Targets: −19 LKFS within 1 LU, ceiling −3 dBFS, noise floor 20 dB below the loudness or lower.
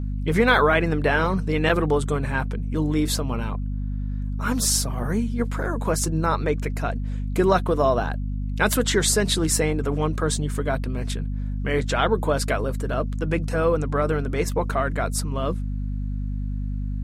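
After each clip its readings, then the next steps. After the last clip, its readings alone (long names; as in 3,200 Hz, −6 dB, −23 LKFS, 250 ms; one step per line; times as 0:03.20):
number of dropouts 1; longest dropout 4.6 ms; mains hum 50 Hz; hum harmonics up to 250 Hz; level of the hum −24 dBFS; integrated loudness −23.5 LKFS; sample peak −5.5 dBFS; target loudness −19.0 LKFS
→ repair the gap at 0:01.69, 4.6 ms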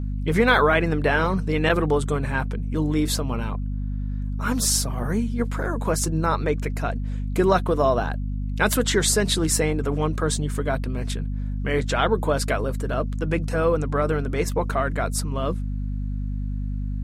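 number of dropouts 0; mains hum 50 Hz; hum harmonics up to 250 Hz; level of the hum −24 dBFS
→ hum removal 50 Hz, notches 5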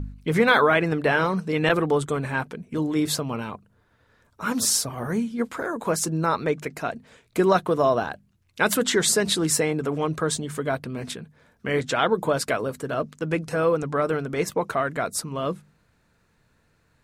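mains hum none found; integrated loudness −24.0 LKFS; sample peak −6.0 dBFS; target loudness −19.0 LKFS
→ level +5 dB
brickwall limiter −3 dBFS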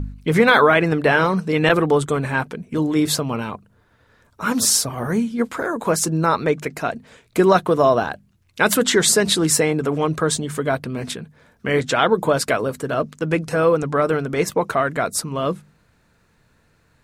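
integrated loudness −19.0 LKFS; sample peak −3.0 dBFS; background noise floor −60 dBFS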